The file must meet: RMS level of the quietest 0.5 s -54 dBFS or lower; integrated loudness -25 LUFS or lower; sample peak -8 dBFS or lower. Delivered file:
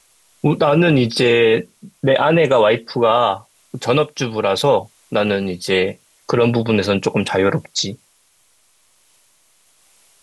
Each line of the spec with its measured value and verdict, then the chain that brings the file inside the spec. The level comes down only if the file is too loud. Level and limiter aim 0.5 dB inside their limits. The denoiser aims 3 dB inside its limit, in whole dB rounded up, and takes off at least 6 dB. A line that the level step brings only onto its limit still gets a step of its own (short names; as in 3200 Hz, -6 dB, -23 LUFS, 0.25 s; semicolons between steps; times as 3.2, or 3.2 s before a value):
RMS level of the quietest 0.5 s -58 dBFS: OK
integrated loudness -17.0 LUFS: fail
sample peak -5.0 dBFS: fail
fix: gain -8.5 dB